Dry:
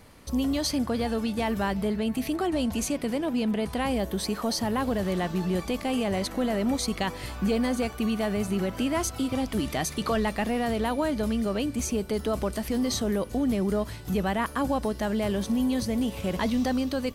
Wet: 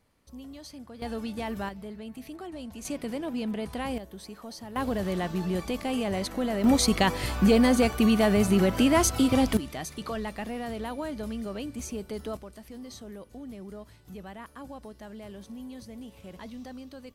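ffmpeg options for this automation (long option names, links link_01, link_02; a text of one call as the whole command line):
ffmpeg -i in.wav -af "asetnsamples=nb_out_samples=441:pad=0,asendcmd='1.02 volume volume -6dB;1.69 volume volume -13dB;2.85 volume volume -5dB;3.98 volume volume -14dB;4.76 volume volume -2dB;6.64 volume volume 5.5dB;9.57 volume volume -7.5dB;12.37 volume volume -16dB',volume=-17.5dB" out.wav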